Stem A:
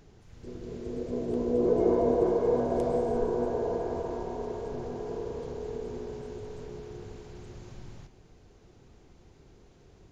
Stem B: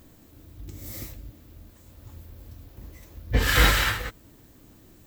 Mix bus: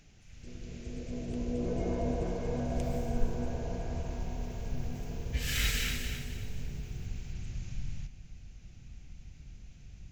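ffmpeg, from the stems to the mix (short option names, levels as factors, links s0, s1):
-filter_complex "[0:a]asubboost=boost=4.5:cutoff=180,volume=0.794[s0];[1:a]equalizer=f=710:w=0.32:g=-9.5,adelay=2000,volume=0.282,afade=t=in:st=4:d=0.71:silence=0.237137,asplit=2[s1][s2];[s2]volume=0.422,aecho=0:1:265|530|795|1060|1325:1|0.34|0.116|0.0393|0.0134[s3];[s0][s1][s3]amix=inputs=3:normalize=0,equalizer=f=100:t=o:w=0.67:g=-4,equalizer=f=400:t=o:w=0.67:g=-12,equalizer=f=1000:t=o:w=0.67:g=-9,equalizer=f=2500:t=o:w=0.67:g=9,equalizer=f=6300:t=o:w=0.67:g=7"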